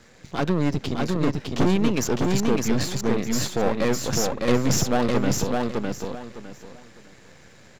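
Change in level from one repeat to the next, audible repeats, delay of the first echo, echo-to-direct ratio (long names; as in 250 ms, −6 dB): −12.5 dB, 3, 607 ms, −2.5 dB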